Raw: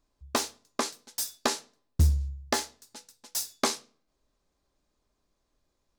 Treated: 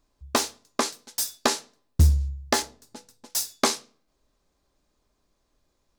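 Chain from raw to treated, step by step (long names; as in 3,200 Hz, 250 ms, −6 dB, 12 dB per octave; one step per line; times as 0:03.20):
0:02.62–0:03.30: tilt shelving filter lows +6 dB, about 900 Hz
level +4.5 dB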